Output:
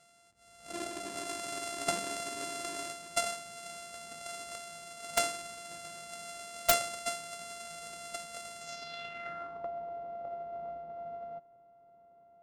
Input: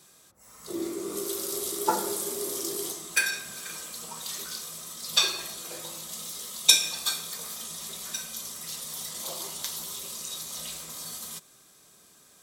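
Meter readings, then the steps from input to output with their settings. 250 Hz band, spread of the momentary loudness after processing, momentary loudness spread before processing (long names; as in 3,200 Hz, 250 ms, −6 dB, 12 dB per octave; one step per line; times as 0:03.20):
−9.0 dB, 12 LU, 13 LU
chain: samples sorted by size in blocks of 64 samples
low-pass filter sweep 8,700 Hz → 730 Hz, 0:08.58–0:09.69
wrap-around overflow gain 4.5 dB
level −7.5 dB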